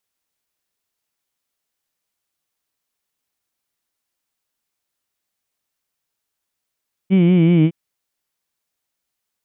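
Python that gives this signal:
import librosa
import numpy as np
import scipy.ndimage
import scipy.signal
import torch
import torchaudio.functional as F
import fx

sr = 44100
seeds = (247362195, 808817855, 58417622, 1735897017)

y = fx.vowel(sr, seeds[0], length_s=0.61, word='heed', hz=185.0, glide_st=-2.5, vibrato_hz=5.3, vibrato_st=0.9)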